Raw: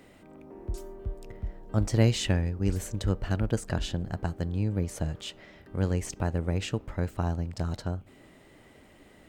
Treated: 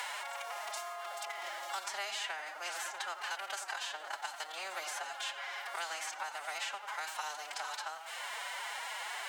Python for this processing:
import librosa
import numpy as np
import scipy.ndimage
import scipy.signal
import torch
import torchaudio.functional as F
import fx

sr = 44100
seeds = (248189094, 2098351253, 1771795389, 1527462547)

p1 = fx.bin_compress(x, sr, power=0.6)
p2 = fx.ladder_highpass(p1, sr, hz=860.0, resonance_pct=40)
p3 = p2 + fx.echo_tape(p2, sr, ms=89, feedback_pct=64, wet_db=-8, lp_hz=1600.0, drive_db=24.0, wow_cents=40, dry=0)
p4 = fx.pitch_keep_formants(p3, sr, semitones=10.0)
p5 = fx.band_squash(p4, sr, depth_pct=100)
y = p5 * librosa.db_to_amplitude(4.5)